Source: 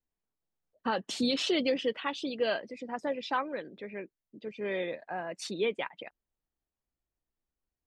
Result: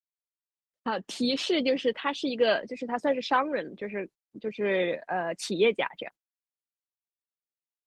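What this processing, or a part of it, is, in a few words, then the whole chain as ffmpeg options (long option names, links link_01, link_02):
video call: -af "highpass=frequency=110:width=0.5412,highpass=frequency=110:width=1.3066,dynaudnorm=framelen=780:gausssize=5:maxgain=7dB,agate=range=-28dB:threshold=-44dB:ratio=16:detection=peak" -ar 48000 -c:a libopus -b:a 20k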